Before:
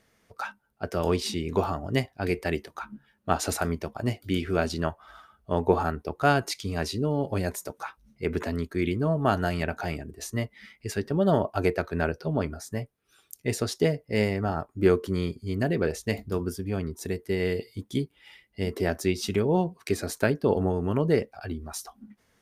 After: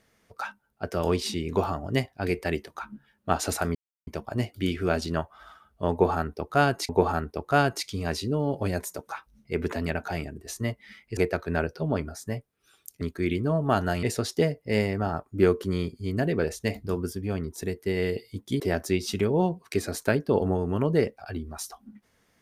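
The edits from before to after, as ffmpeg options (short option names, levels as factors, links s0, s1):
-filter_complex "[0:a]asplit=8[s0][s1][s2][s3][s4][s5][s6][s7];[s0]atrim=end=3.75,asetpts=PTS-STARTPTS,afade=t=out:st=3.746:d=0.004:c=hsin,apad=pad_dur=0.32[s8];[s1]atrim=start=3.75:end=6.572,asetpts=PTS-STARTPTS,afade=t=in:d=0.004:c=hsin[s9];[s2]atrim=start=5.598:end=8.572[s10];[s3]atrim=start=9.588:end=10.902[s11];[s4]atrim=start=11.618:end=13.462[s12];[s5]atrim=start=8.568:end=9.592[s13];[s6]atrim=start=13.458:end=18.032[s14];[s7]atrim=start=18.748[s15];[s8][s9]concat=n=2:v=0:a=1[s16];[s16][s10]acrossfade=d=0.004:c1=hsin:c2=hsin[s17];[s17][s11]acrossfade=d=0.004:c1=hsin:c2=hsin[s18];[s18][s12]acrossfade=d=0.004:c1=hsin:c2=hsin[s19];[s19][s13]acrossfade=d=0.004:c1=hsin:c2=hsin[s20];[s20][s14]acrossfade=d=0.004:c1=hsin:c2=hsin[s21];[s21][s15]acrossfade=d=0.004:c1=hsin:c2=hsin"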